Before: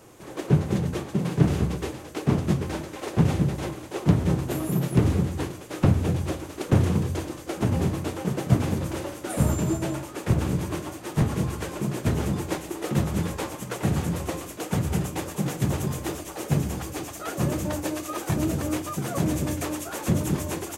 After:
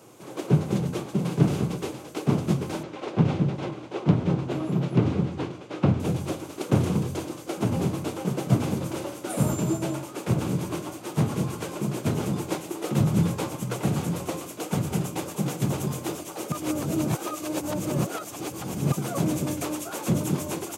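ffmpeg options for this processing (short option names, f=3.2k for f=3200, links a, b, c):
-filter_complex "[0:a]asettb=1/sr,asplit=3[a][b][c];[a]atrim=end=2.834[d];[b]atrim=start=2.83:end=6,asetpts=PTS-STARTPTS,afade=t=in:d=0.004:c=qsin,afade=t=out:st=3.166:d=0.004:c=qsin,lowpass=3.9k[e];[c]atrim=start=5.996[f];[d][e]acrossfade=d=0.004:c1=hsin:c2=qsin[g];[g][f]acrossfade=d=0.004:c1=qsin:c2=hsin,asettb=1/sr,asplit=3[h][i][j];[h]atrim=end=13.004[k];[i]atrim=start=13:end=13.81,asetpts=PTS-STARTPTS,afade=t=in:d=0.004:c=qsin,afade=t=out:st=0.806:d=0.004:c=qsin,equalizer=f=120:t=o:w=1.6:g=9[l];[j]atrim=start=13.806[m];[k][l]acrossfade=d=0.004:c1=hsin:c2=qsin[n];[n][m]acrossfade=d=0.004:c1=qsin:c2=hsin,asplit=3[o][p][q];[o]atrim=end=16.522[r];[p]atrim=start=16.518:end=18.922,asetpts=PTS-STARTPTS,areverse[s];[q]atrim=start=18.918[t];[r][s]acrossfade=d=0.004:c1=hsin:c2=hsin[u];[u][t]acrossfade=d=0.004:c1=hsin:c2=hsin,highpass=f=110:w=0.5412,highpass=f=110:w=1.3066,equalizer=f=1.8k:w=5.2:g=-7.5"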